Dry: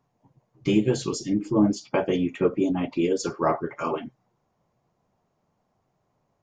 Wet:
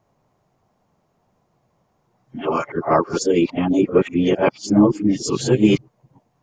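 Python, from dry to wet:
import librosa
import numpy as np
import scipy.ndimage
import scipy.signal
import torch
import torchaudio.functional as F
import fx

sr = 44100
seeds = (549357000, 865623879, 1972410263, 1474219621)

y = x[::-1].copy()
y = F.gain(torch.from_numpy(y), 6.5).numpy()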